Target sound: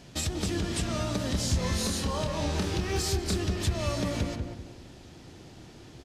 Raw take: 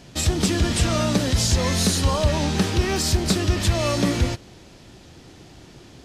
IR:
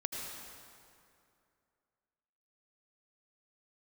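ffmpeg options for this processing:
-filter_complex "[0:a]acompressor=threshold=-23dB:ratio=6,asettb=1/sr,asplit=3[a][b][c];[a]atrim=end=1.314[d];[b]atrim=start=1.31:end=3.36,asetpts=PTS-STARTPTS,afade=t=in:d=0.004:c=qsin,afade=t=out:st=2.046:d=0.004:c=qsin,asplit=2[e][f];[f]adelay=28,volume=-6dB[g];[e][g]amix=inputs=2:normalize=0,atrim=end_sample=90405[h];[c]atrim=start=3.356[i];[d][h]acrossfade=d=0.004:c1=hsin:c2=qsin[j];[j][i]acrossfade=d=0.004:c1=qsin:c2=hsin,asplit=2[k][l];[l]adelay=191,lowpass=f=960:p=1,volume=-3dB,asplit=2[m][n];[n]adelay=191,lowpass=f=960:p=1,volume=0.37,asplit=2[o][p];[p]adelay=191,lowpass=f=960:p=1,volume=0.37,asplit=2[q][r];[r]adelay=191,lowpass=f=960:p=1,volume=0.37,asplit=2[s][t];[t]adelay=191,lowpass=f=960:p=1,volume=0.37[u];[k][m][o][q][s][u]amix=inputs=6:normalize=0,volume=-4.5dB"

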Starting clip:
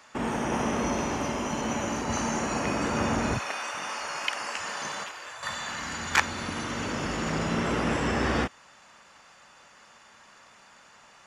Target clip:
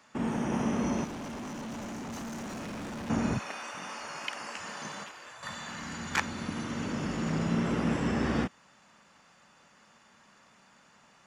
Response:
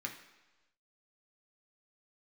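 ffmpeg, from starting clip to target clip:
-filter_complex "[0:a]equalizer=f=190:t=o:w=1.5:g=9.5,asettb=1/sr,asplit=3[a][b][c];[a]atrim=end=1.044[d];[b]atrim=start=1.04:end=3.1,asetpts=PTS-STARTPTS,afade=t=in:d=0.004:c=qsin,afade=t=out:st=2.056:d=0.004:c=qsin,volume=30.5dB,asoftclip=hard,volume=-30.5dB[e];[c]atrim=start=3.096[f];[d][e]acrossfade=d=0.004:c1=hsin:c2=qsin[g];[g][f]acrossfade=d=0.004:c1=qsin:c2=hsin,volume=-7dB"

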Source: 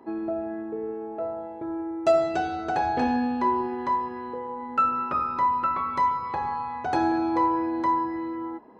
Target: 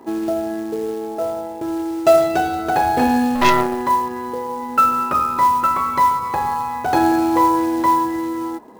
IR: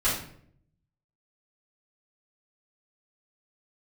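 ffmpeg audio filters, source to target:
-filter_complex "[0:a]asettb=1/sr,asplit=3[a][b][c];[a]atrim=end=3.354[d];[b]atrim=start=3.35:end=3.82,asetpts=PTS-STARTPTS,afade=t=in:d=0.004:c=qsin,afade=t=out:st=0.466:d=0.004:c=qsin,aeval=exprs='0.211*(cos(1*acos(clip(val(0)/0.211,-1,1)))-cos(1*PI/2))+0.0944*(cos(6*acos(clip(val(0)/0.211,-1,1)))-cos(6*PI/2))+0.0531*(cos(8*acos(clip(val(0)/0.211,-1,1)))-cos(8*PI/2))':c=same[e];[c]atrim=start=3.816[f];[d][e]acrossfade=d=0.004:c1=hsin:c2=qsin[g];[g][f]acrossfade=d=0.004:c1=qsin:c2=hsin,acrusher=bits=5:mode=log:mix=0:aa=0.000001,volume=8dB"

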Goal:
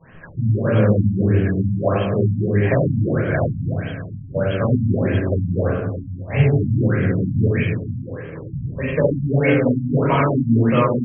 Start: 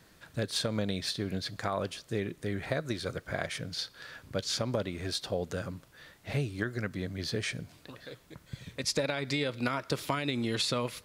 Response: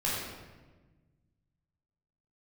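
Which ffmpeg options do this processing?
-filter_complex "[0:a]bandreject=f=60:t=h:w=6,bandreject=f=120:t=h:w=6,bandreject=f=180:t=h:w=6,bandreject=f=240:t=h:w=6,bandreject=f=300:t=h:w=6,bandreject=f=360:t=h:w=6[a];[1:a]atrim=start_sample=2205[b];[a][b]afir=irnorm=-1:irlink=0,afftfilt=real='re*lt(b*sr/1024,250*pow(3300/250,0.5+0.5*sin(2*PI*1.6*pts/sr)))':imag='im*lt(b*sr/1024,250*pow(3300/250,0.5+0.5*sin(2*PI*1.6*pts/sr)))':win_size=1024:overlap=0.75,volume=7.5dB"

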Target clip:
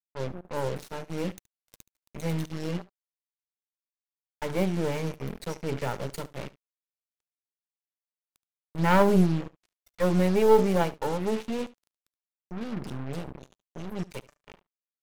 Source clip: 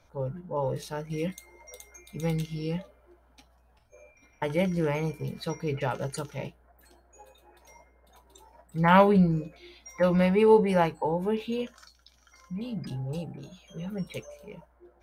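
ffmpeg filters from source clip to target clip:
-filter_complex "[0:a]aeval=exprs='if(lt(val(0),0),0.251*val(0),val(0))':c=same,adynamicequalizer=threshold=0.00891:dfrequency=260:dqfactor=0.83:tfrequency=260:tqfactor=0.83:attack=5:release=100:ratio=0.375:range=2.5:mode=boostabove:tftype=bell,acrusher=bits=5:mix=0:aa=0.5,asplit=2[a][b];[b]aecho=0:1:73:0.1[c];[a][c]amix=inputs=2:normalize=0"

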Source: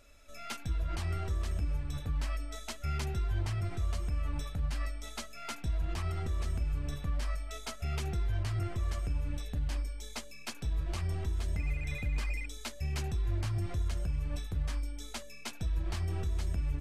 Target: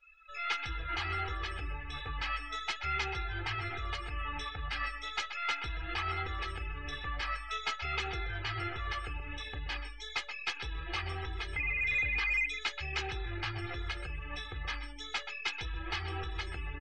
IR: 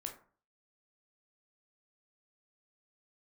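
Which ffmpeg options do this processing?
-filter_complex "[0:a]equalizer=f=2.6k:t=o:w=2.6:g=13,aecho=1:1:2.4:0.72,asplit=2[a][b];[b]adelay=128.3,volume=-10dB,highshelf=f=4k:g=-2.89[c];[a][c]amix=inputs=2:normalize=0,asplit=2[d][e];[e]highpass=f=720:p=1,volume=12dB,asoftclip=type=tanh:threshold=-13dB[f];[d][f]amix=inputs=2:normalize=0,lowpass=f=2.2k:p=1,volume=-6dB,afftdn=nr=24:nf=-42,volume=-6dB"

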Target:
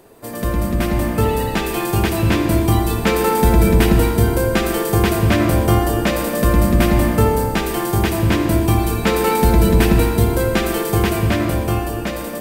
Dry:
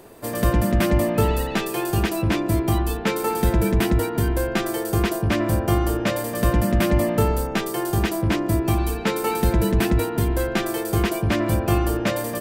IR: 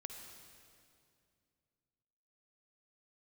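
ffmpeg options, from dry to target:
-filter_complex "[0:a]dynaudnorm=f=140:g=17:m=11.5dB[a];[1:a]atrim=start_sample=2205,afade=t=out:st=0.37:d=0.01,atrim=end_sample=16758[b];[a][b]afir=irnorm=-1:irlink=0,volume=3dB"

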